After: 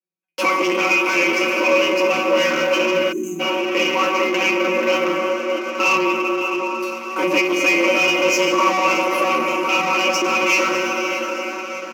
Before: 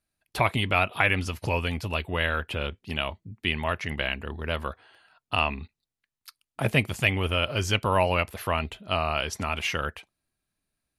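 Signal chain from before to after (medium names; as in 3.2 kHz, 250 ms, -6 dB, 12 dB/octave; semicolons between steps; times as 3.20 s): small resonant body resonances 260/1400 Hz, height 11 dB, ringing for 20 ms; in parallel at -2 dB: compressor with a negative ratio -24 dBFS; on the sum: feedback comb 210 Hz, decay 0.27 s, harmonics all, mix 100%; on a send: feedback delay 566 ms, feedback 34%, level -14.5 dB; on the sum: plate-style reverb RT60 4.3 s, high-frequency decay 0.75×, DRR 3 dB; waveshaping leveller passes 5; treble shelf 8.4 kHz -7.5 dB; time-frequency box 2.87–3.13 s, 280–6400 Hz -28 dB; rippled EQ curve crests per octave 0.76, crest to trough 14 dB; frequency shift +180 Hz; tape speed -8%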